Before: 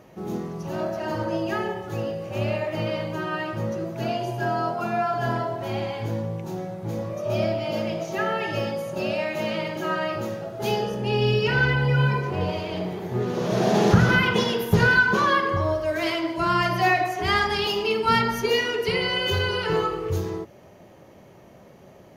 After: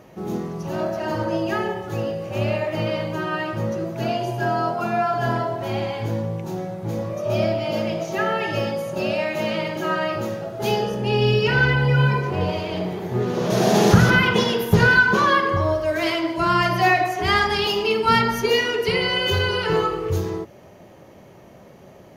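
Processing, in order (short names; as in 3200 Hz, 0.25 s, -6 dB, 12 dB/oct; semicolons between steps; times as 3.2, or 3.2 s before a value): 13.5–14.1 high shelf 6200 Hz +10.5 dB; gain +3 dB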